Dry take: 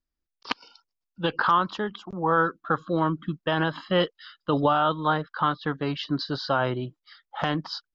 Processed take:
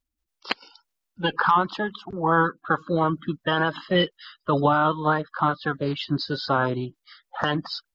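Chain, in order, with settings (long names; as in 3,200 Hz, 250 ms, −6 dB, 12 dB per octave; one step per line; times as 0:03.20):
spectral magnitudes quantised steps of 30 dB
level +2.5 dB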